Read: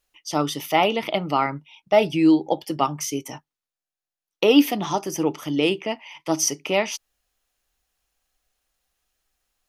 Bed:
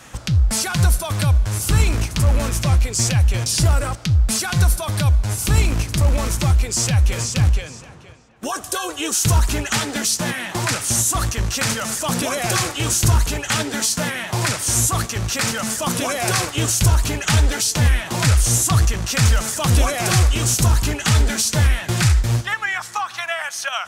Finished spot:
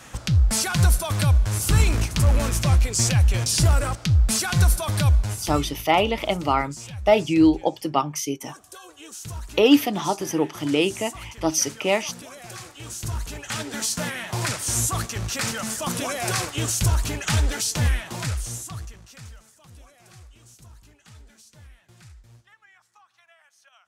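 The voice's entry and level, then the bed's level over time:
5.15 s, 0.0 dB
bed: 5.18 s -2 dB
5.75 s -19 dB
12.65 s -19 dB
13.9 s -5.5 dB
17.9 s -5.5 dB
19.59 s -32.5 dB

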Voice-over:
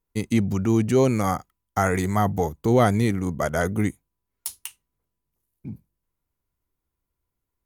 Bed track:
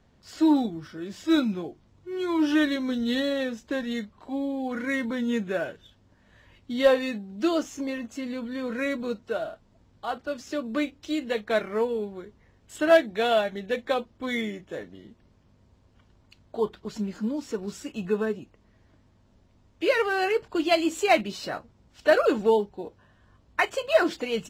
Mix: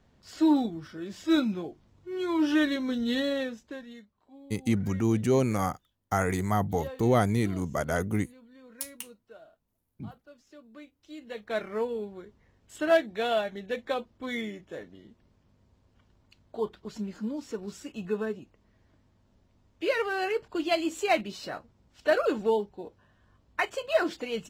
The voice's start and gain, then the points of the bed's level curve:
4.35 s, -5.0 dB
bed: 3.38 s -2 dB
4.13 s -21 dB
10.91 s -21 dB
11.63 s -4.5 dB

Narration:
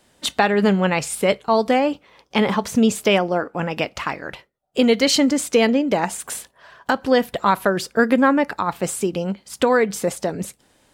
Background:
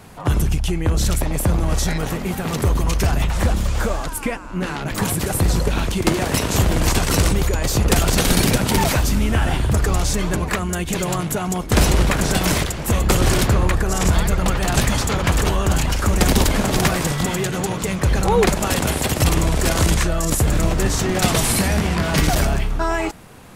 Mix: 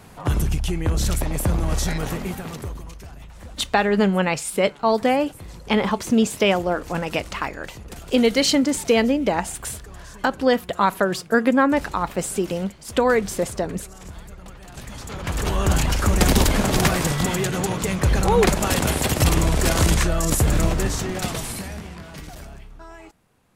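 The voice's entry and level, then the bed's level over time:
3.35 s, -1.5 dB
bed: 2.22 s -3 dB
3.03 s -22 dB
14.72 s -22 dB
15.64 s -1 dB
20.63 s -1 dB
22.24 s -21 dB

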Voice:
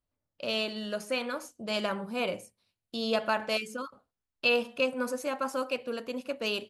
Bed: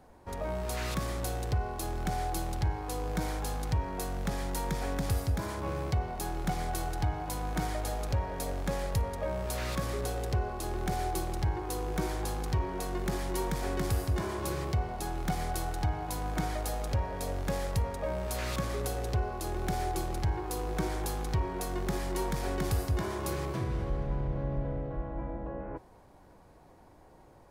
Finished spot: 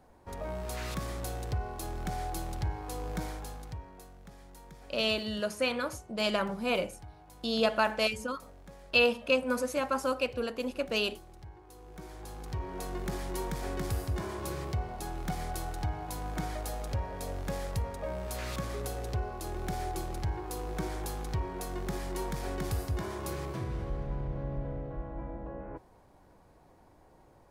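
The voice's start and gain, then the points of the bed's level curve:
4.50 s, +1.5 dB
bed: 3.18 s -3 dB
4.18 s -18.5 dB
11.72 s -18.5 dB
12.81 s -3 dB

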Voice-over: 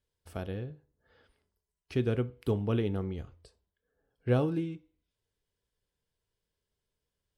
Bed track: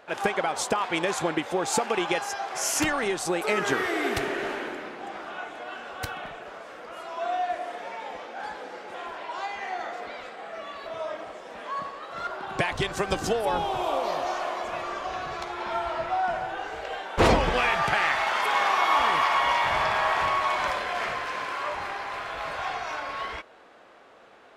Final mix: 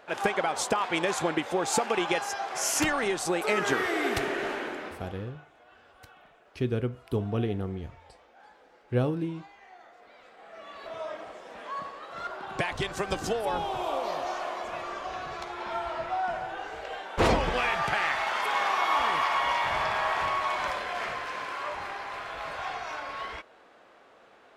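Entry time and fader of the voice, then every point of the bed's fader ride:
4.65 s, +0.5 dB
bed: 4.88 s -1 dB
5.41 s -19 dB
9.95 s -19 dB
10.87 s -3.5 dB

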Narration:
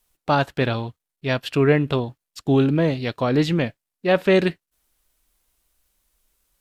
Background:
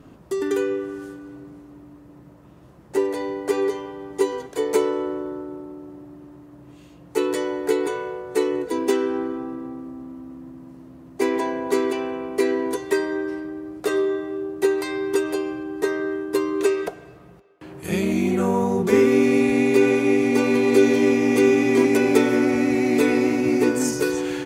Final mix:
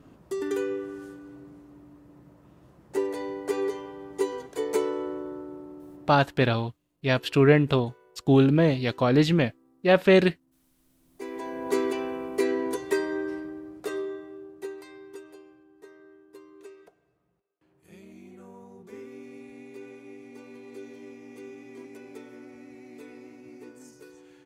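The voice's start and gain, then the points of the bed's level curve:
5.80 s, -1.0 dB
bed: 6.28 s -6 dB
6.49 s -29 dB
10.76 s -29 dB
11.7 s -4.5 dB
13.35 s -4.5 dB
15.68 s -27 dB

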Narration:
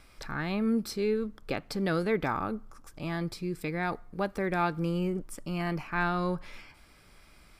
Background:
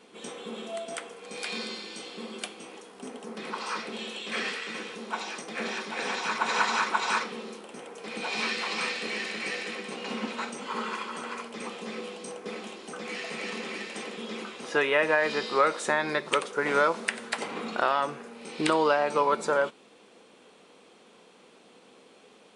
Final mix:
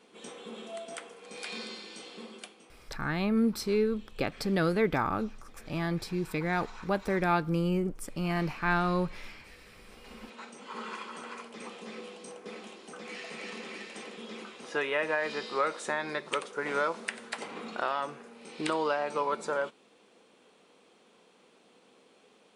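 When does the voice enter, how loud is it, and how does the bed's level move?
2.70 s, +1.5 dB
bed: 2.19 s -5 dB
3.12 s -22 dB
9.6 s -22 dB
10.91 s -6 dB

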